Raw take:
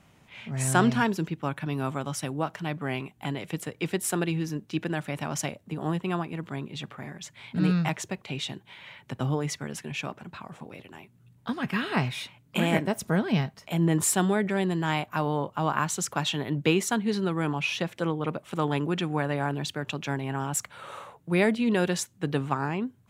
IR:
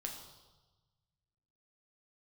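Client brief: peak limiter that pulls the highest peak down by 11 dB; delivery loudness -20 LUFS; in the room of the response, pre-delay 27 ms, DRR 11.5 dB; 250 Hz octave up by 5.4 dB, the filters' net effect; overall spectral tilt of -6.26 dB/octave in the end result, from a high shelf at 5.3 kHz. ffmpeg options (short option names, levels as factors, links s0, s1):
-filter_complex "[0:a]equalizer=f=250:t=o:g=7.5,highshelf=f=5300:g=-6.5,alimiter=limit=0.15:level=0:latency=1,asplit=2[s0][s1];[1:a]atrim=start_sample=2205,adelay=27[s2];[s1][s2]afir=irnorm=-1:irlink=0,volume=0.316[s3];[s0][s3]amix=inputs=2:normalize=0,volume=2.37"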